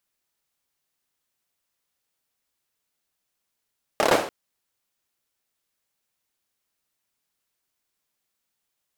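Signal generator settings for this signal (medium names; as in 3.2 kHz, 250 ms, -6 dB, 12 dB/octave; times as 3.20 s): hand clap length 0.29 s, bursts 5, apart 28 ms, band 520 Hz, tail 0.49 s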